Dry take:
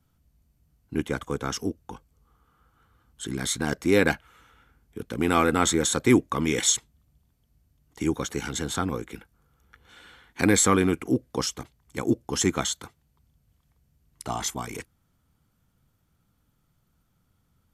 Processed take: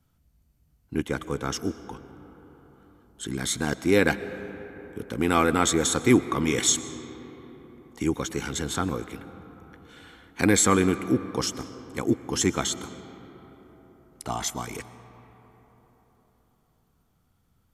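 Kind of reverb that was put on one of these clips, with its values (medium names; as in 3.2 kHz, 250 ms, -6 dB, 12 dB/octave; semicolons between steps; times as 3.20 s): algorithmic reverb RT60 4.6 s, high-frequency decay 0.4×, pre-delay 80 ms, DRR 13.5 dB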